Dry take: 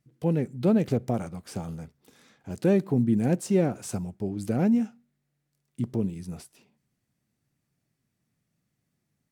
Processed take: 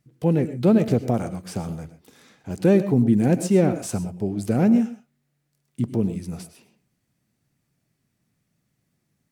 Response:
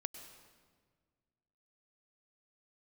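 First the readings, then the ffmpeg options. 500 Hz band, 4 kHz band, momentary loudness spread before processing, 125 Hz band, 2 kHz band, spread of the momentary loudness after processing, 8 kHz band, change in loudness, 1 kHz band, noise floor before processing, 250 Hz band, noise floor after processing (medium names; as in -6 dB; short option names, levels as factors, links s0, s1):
+5.0 dB, +5.0 dB, 15 LU, +5.0 dB, +5.0 dB, 14 LU, +5.0 dB, +5.0 dB, +5.0 dB, -79 dBFS, +5.0 dB, -74 dBFS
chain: -filter_complex "[1:a]atrim=start_sample=2205,atrim=end_sample=6174[s0];[0:a][s0]afir=irnorm=-1:irlink=0,volume=2.37"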